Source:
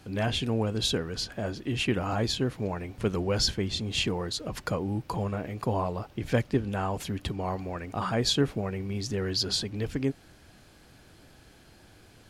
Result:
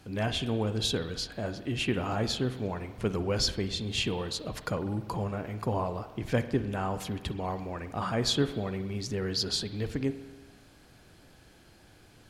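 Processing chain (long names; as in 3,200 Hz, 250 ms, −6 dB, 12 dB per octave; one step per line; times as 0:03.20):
spring reverb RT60 1.3 s, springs 47 ms, chirp 20 ms, DRR 11 dB
level −2 dB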